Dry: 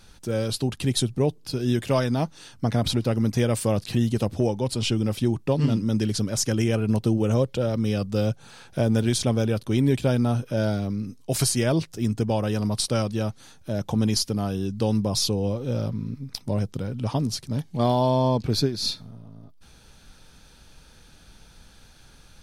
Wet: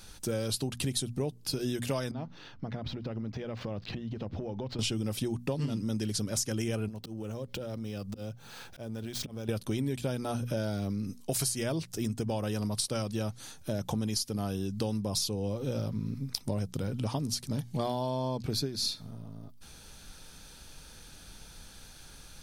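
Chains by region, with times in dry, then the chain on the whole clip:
0:02.11–0:04.79: running median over 5 samples + downward compressor 12 to 1, threshold −31 dBFS + high-frequency loss of the air 230 metres
0:06.88–0:09.49: running median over 5 samples + volume swells 454 ms + downward compressor 8 to 1, threshold −34 dBFS
whole clip: high-shelf EQ 5,800 Hz +8.5 dB; mains-hum notches 60/120/180/240 Hz; downward compressor 6 to 1, threshold −29 dBFS

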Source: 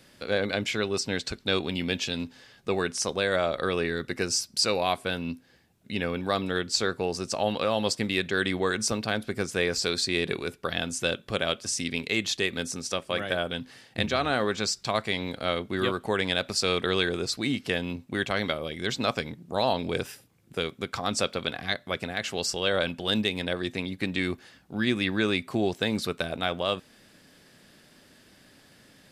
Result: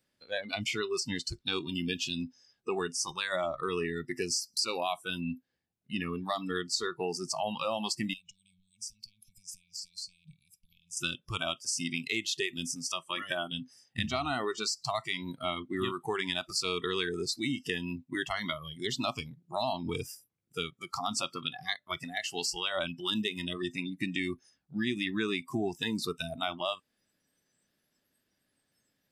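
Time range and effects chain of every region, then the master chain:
0:08.13–0:10.97: downward compressor 16 to 1, threshold −35 dBFS + linear-phase brick-wall band-stop 210–2,200 Hz
whole clip: noise reduction from a noise print of the clip's start 23 dB; downward compressor 2.5 to 1, threshold −30 dBFS

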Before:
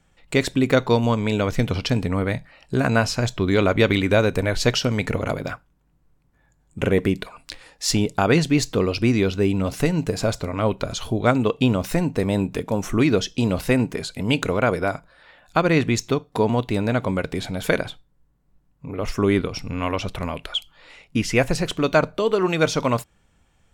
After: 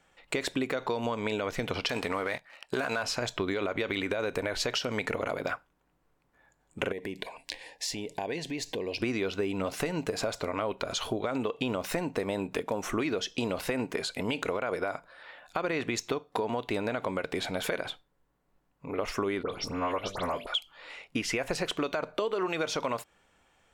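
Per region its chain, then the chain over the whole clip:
0:01.89–0:03.03: low-shelf EQ 400 Hz −11.5 dB + leveller curve on the samples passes 2
0:06.92–0:09.00: downward compressor, threshold −28 dBFS + Butterworth band-reject 1,300 Hz, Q 2.1
0:19.43–0:20.47: parametric band 2,500 Hz −9 dB 0.51 octaves + hum removal 48.99 Hz, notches 14 + all-pass dispersion highs, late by 91 ms, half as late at 3,000 Hz
whole clip: bass and treble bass −15 dB, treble −5 dB; brickwall limiter −15 dBFS; downward compressor, threshold −29 dBFS; level +2 dB

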